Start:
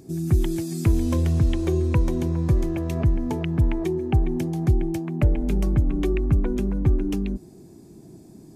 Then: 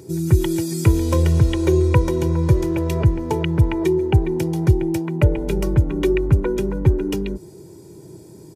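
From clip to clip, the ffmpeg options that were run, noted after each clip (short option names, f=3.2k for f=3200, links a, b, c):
-af "highpass=91,aecho=1:1:2.1:0.74,volume=5.5dB"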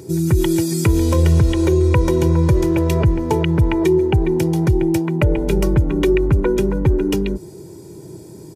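-af "alimiter=level_in=10dB:limit=-1dB:release=50:level=0:latency=1,volume=-5.5dB"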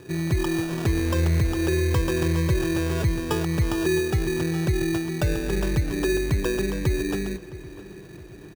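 -filter_complex "[0:a]acrusher=samples=21:mix=1:aa=0.000001,asplit=2[a][b];[b]adelay=664,lowpass=f=4.3k:p=1,volume=-17dB,asplit=2[c][d];[d]adelay=664,lowpass=f=4.3k:p=1,volume=0.5,asplit=2[e][f];[f]adelay=664,lowpass=f=4.3k:p=1,volume=0.5,asplit=2[g][h];[h]adelay=664,lowpass=f=4.3k:p=1,volume=0.5[i];[a][c][e][g][i]amix=inputs=5:normalize=0,volume=-8dB"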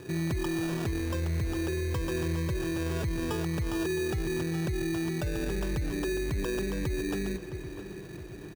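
-af "alimiter=level_in=0.5dB:limit=-24dB:level=0:latency=1:release=47,volume=-0.5dB"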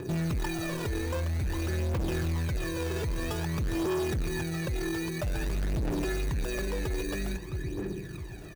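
-af "aphaser=in_gain=1:out_gain=1:delay=2.4:decay=0.62:speed=0.51:type=triangular,volume=27dB,asoftclip=hard,volume=-27dB"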